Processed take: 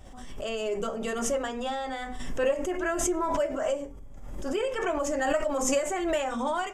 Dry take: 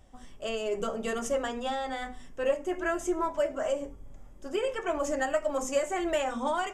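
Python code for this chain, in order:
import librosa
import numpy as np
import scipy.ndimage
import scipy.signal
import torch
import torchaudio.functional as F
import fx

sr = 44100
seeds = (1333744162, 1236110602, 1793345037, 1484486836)

y = fx.pre_swell(x, sr, db_per_s=37.0)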